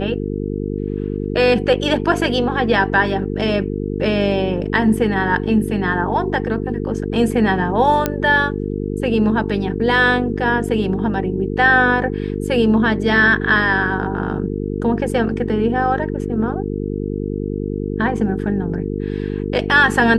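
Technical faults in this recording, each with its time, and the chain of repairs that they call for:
buzz 50 Hz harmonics 9 -23 dBFS
8.06 pop -3 dBFS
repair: de-click; de-hum 50 Hz, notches 9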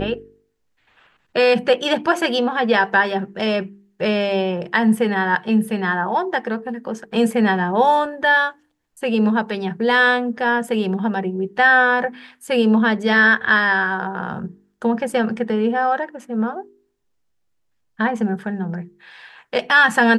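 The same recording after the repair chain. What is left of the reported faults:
none

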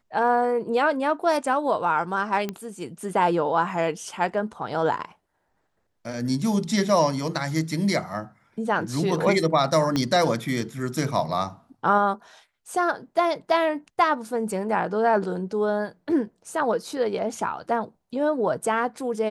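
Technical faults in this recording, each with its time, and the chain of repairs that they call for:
2.49 pop -15 dBFS
9.96 pop -11 dBFS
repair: de-click

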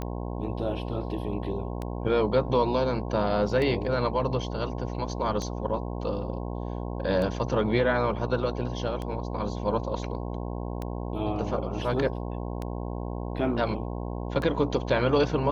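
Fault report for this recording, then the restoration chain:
buzz 60 Hz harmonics 18 -33 dBFS
tick 33 1/3 rpm -20 dBFS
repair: de-click; de-hum 60 Hz, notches 18

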